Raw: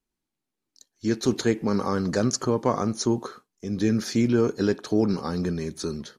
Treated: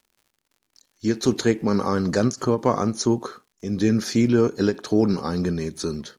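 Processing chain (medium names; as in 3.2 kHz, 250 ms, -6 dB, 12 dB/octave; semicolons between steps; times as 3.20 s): crackle 100 per s -50 dBFS; endings held to a fixed fall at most 330 dB/s; trim +3 dB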